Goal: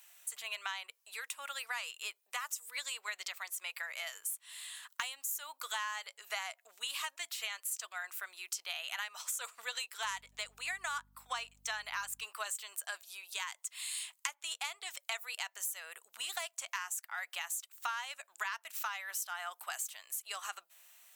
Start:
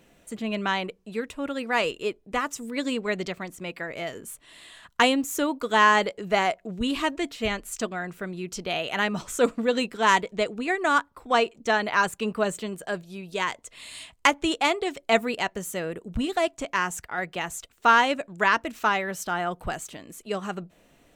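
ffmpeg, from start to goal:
-filter_complex "[0:a]highpass=f=900:w=0.5412,highpass=f=900:w=1.3066,aemphasis=mode=production:type=75fm,acompressor=threshold=-31dB:ratio=8,asettb=1/sr,asplit=3[a][b][c];[a]atrim=end=10.034[d];[b]atrim=start=10.03:end=12.25,asetpts=PTS-STARTPTS,afade=t=in:d=0.004:c=qsin,afade=t=out:st=2.216:d=0.004:c=qsin,aeval=exprs='val(0)+0.000794*(sin(2*PI*50*n/s)+sin(2*PI*2*50*n/s)/2+sin(2*PI*3*50*n/s)/3+sin(2*PI*4*50*n/s)/4+sin(2*PI*5*50*n/s)/5)':c=same[e];[c]atrim=start=12.246[f];[d][e]acrossfade=d=0.004:c1=hsin:c2=qsin[g];[g][f]acrossfade=d=0.004:c1=qsin:c2=hsin,volume=-4.5dB"

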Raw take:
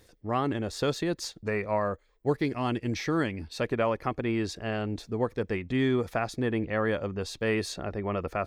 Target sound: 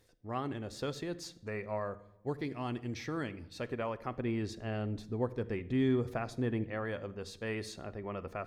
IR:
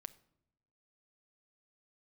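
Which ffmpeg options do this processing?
-filter_complex "[0:a]asettb=1/sr,asplit=3[a][b][c];[a]atrim=end=4.174[d];[b]atrim=start=4.17:end=6.64,asetpts=PTS-STARTPTS,afade=t=in:d=0.004:c=qsin,afade=t=out:st=2.466:d=0.004:c=qsin,lowshelf=f=500:g=5.5[e];[c]atrim=start=6.636[f];[d][e]acrossfade=d=0.004:c1=hsin:c2=qsin[g];[g][f]acrossfade=d=0.004:c1=qsin:c2=hsin[h];[1:a]atrim=start_sample=2205,asetrate=35721,aresample=44100[i];[h][i]afir=irnorm=-1:irlink=0,volume=-5dB"

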